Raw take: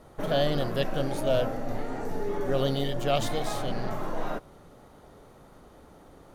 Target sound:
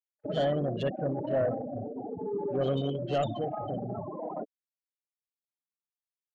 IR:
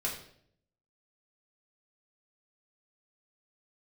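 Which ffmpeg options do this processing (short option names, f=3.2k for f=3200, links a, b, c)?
-filter_complex "[0:a]highpass=68,highshelf=f=2.6k:g=2.5,afftfilt=real='re*gte(hypot(re,im),0.0708)':imag='im*gte(hypot(re,im),0.0708)':win_size=1024:overlap=0.75,asoftclip=type=tanh:threshold=-20.5dB,acrossover=split=2600[a][b];[a]adelay=60[c];[c][b]amix=inputs=2:normalize=0"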